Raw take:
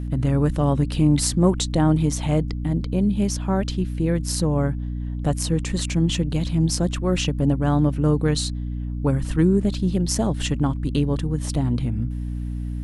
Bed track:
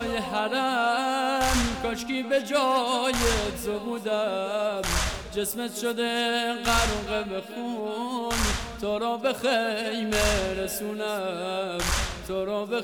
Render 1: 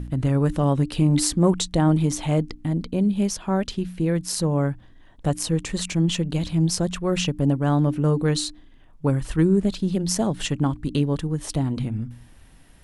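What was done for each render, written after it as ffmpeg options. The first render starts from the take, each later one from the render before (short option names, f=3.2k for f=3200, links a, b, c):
-af "bandreject=f=60:t=h:w=4,bandreject=f=120:t=h:w=4,bandreject=f=180:t=h:w=4,bandreject=f=240:t=h:w=4,bandreject=f=300:t=h:w=4"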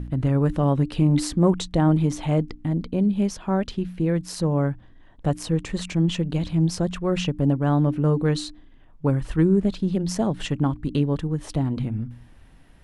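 -af "highshelf=f=4.9k:g=-12"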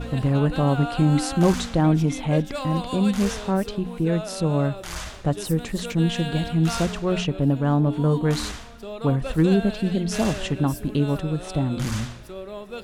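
-filter_complex "[1:a]volume=-7.5dB[a];[0:a][a]amix=inputs=2:normalize=0"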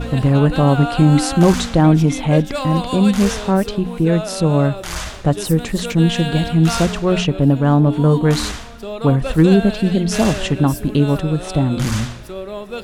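-af "volume=7dB,alimiter=limit=-1dB:level=0:latency=1"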